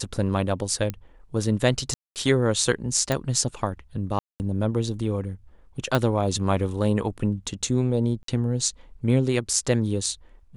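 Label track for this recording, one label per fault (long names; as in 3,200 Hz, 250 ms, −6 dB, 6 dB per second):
0.900000	0.900000	click −15 dBFS
1.940000	2.160000	drop-out 218 ms
3.120000	3.120000	click −10 dBFS
4.190000	4.400000	drop-out 209 ms
5.950000	5.950000	click
8.230000	8.280000	drop-out 53 ms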